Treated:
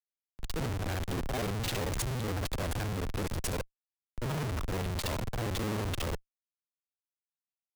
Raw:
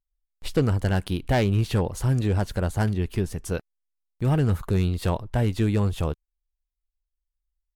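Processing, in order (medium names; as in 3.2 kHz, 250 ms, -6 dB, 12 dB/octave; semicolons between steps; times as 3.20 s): time reversed locally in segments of 43 ms; Schmitt trigger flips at -39.5 dBFS; three bands expanded up and down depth 40%; trim -6.5 dB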